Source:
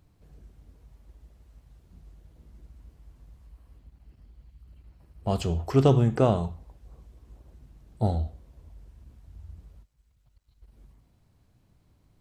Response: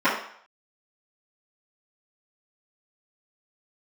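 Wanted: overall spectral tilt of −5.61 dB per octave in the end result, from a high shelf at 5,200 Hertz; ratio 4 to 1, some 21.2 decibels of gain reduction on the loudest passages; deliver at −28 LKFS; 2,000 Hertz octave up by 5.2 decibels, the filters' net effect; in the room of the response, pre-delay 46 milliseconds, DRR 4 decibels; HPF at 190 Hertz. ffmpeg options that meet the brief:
-filter_complex "[0:a]highpass=190,equalizer=frequency=2000:width_type=o:gain=8.5,highshelf=frequency=5200:gain=-6,acompressor=threshold=-43dB:ratio=4,asplit=2[link_01][link_02];[1:a]atrim=start_sample=2205,adelay=46[link_03];[link_02][link_03]afir=irnorm=-1:irlink=0,volume=-23.5dB[link_04];[link_01][link_04]amix=inputs=2:normalize=0,volume=18.5dB"

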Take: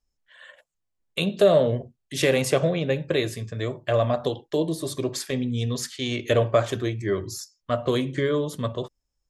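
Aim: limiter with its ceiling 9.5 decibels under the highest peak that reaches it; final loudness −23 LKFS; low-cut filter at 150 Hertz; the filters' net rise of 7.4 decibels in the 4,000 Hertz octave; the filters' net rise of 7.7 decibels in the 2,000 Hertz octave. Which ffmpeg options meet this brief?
ffmpeg -i in.wav -af "highpass=150,equalizer=frequency=2000:width_type=o:gain=7.5,equalizer=frequency=4000:width_type=o:gain=6.5,volume=3dB,alimiter=limit=-10dB:level=0:latency=1" out.wav

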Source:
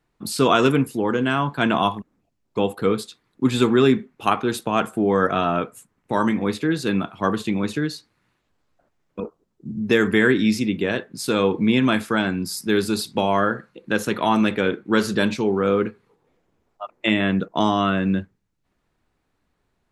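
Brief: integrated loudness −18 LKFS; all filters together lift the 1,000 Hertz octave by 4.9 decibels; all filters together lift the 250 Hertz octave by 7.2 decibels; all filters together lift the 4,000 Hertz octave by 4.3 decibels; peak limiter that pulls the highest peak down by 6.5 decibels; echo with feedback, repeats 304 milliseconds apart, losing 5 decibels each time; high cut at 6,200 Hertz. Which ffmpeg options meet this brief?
ffmpeg -i in.wav -af "lowpass=6200,equalizer=frequency=250:width_type=o:gain=8.5,equalizer=frequency=1000:width_type=o:gain=5.5,equalizer=frequency=4000:width_type=o:gain=5.5,alimiter=limit=-5dB:level=0:latency=1,aecho=1:1:304|608|912|1216|1520|1824|2128:0.562|0.315|0.176|0.0988|0.0553|0.031|0.0173,volume=-2dB" out.wav

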